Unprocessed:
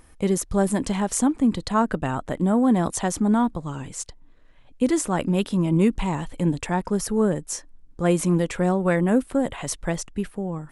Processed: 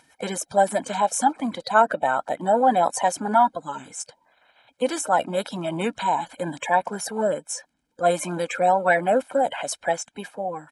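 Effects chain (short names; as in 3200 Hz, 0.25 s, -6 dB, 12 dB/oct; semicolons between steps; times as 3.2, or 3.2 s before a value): bin magnitudes rounded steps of 30 dB; HPF 470 Hz 12 dB/oct; high shelf 3600 Hz -8.5 dB; comb 1.3 ms, depth 71%; gain +5 dB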